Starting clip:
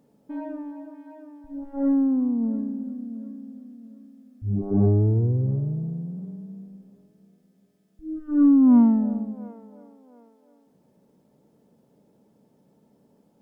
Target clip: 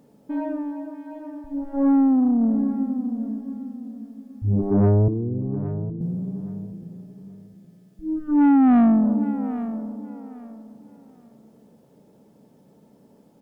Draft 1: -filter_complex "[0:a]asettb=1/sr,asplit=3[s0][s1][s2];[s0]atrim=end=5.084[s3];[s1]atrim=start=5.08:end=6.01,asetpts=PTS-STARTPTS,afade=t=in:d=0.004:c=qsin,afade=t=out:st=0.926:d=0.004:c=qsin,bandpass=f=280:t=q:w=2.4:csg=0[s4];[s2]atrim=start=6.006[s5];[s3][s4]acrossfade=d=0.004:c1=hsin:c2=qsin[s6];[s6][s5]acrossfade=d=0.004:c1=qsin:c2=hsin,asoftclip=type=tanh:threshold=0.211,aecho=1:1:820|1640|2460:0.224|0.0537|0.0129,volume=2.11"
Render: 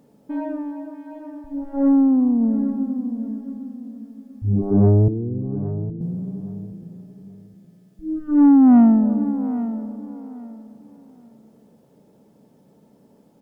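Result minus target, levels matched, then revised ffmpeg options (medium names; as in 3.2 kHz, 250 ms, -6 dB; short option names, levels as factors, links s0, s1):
saturation: distortion -7 dB
-filter_complex "[0:a]asettb=1/sr,asplit=3[s0][s1][s2];[s0]atrim=end=5.084[s3];[s1]atrim=start=5.08:end=6.01,asetpts=PTS-STARTPTS,afade=t=in:d=0.004:c=qsin,afade=t=out:st=0.926:d=0.004:c=qsin,bandpass=f=280:t=q:w=2.4:csg=0[s4];[s2]atrim=start=6.006[s5];[s3][s4]acrossfade=d=0.004:c1=hsin:c2=qsin[s6];[s6][s5]acrossfade=d=0.004:c1=qsin:c2=hsin,asoftclip=type=tanh:threshold=0.106,aecho=1:1:820|1640|2460:0.224|0.0537|0.0129,volume=2.11"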